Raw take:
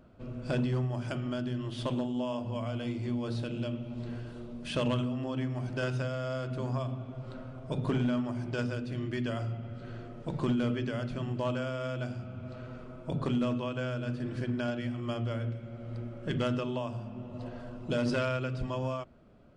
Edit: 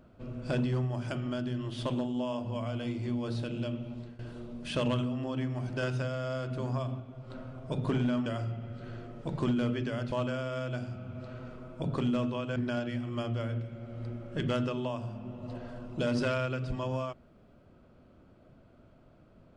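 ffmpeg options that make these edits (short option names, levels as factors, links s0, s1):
-filter_complex "[0:a]asplit=7[s0][s1][s2][s3][s4][s5][s6];[s0]atrim=end=4.19,asetpts=PTS-STARTPTS,afade=t=out:st=3.88:d=0.31:silence=0.11885[s7];[s1]atrim=start=4.19:end=7.002,asetpts=PTS-STARTPTS,afade=t=in:d=0.004:c=hsin:silence=0.11885[s8];[s2]atrim=start=6.998:end=7.302,asetpts=PTS-STARTPTS,volume=0.596[s9];[s3]atrim=start=7.298:end=8.262[s10];[s4]atrim=start=9.268:end=11.132[s11];[s5]atrim=start=11.398:end=13.842[s12];[s6]atrim=start=14.468[s13];[s7][s8]concat=n=2:v=0:a=1[s14];[s14][s9]acrossfade=d=0.004:c1=hsin:c2=hsin[s15];[s15][s10]acrossfade=d=0.004:c1=hsin:c2=hsin[s16];[s16][s11]acrossfade=d=0.004:c1=hsin:c2=hsin[s17];[s17][s12]acrossfade=d=0.004:c1=hsin:c2=hsin[s18];[s18][s13]acrossfade=d=0.004:c1=hsin:c2=hsin"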